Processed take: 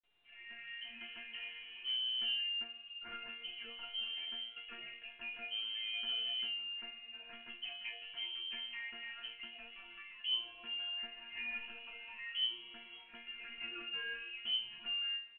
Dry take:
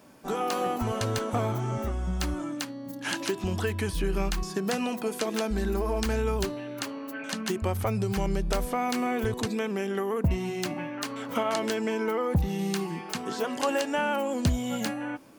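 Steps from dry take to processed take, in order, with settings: opening faded in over 1.18 s; in parallel at -11 dB: wavefolder -29 dBFS; on the sum: low shelf 360 Hz +3 dB; speakerphone echo 0.15 s, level -18 dB; on a send at -22 dB: reverb RT60 0.55 s, pre-delay 60 ms; on the sum: inverted band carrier 3100 Hz; dynamic EQ 720 Hz, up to -4 dB, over -46 dBFS, Q 1.1; resonator bank A#3 fifth, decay 0.37 s; µ-law 64 kbps 8000 Hz

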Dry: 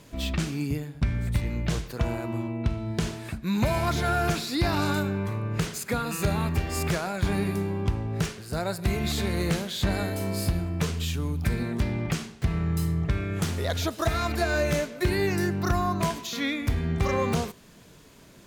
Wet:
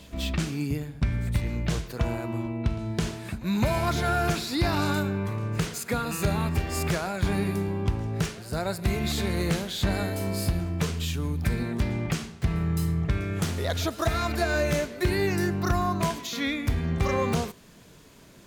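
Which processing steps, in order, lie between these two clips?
reverse echo 0.213 s -22 dB

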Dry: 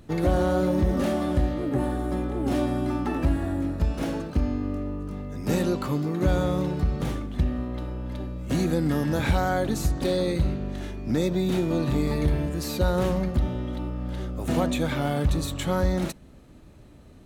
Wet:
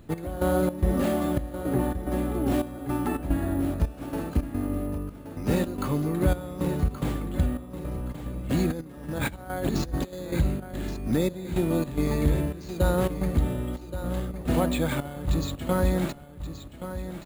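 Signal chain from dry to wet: 8.7–10.13 negative-ratio compressor -28 dBFS, ratio -0.5; step gate "x..xx.xxx" 109 bpm -12 dB; on a send: feedback echo 1.125 s, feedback 26%, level -11 dB; on the sum: careless resampling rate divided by 4×, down filtered, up hold

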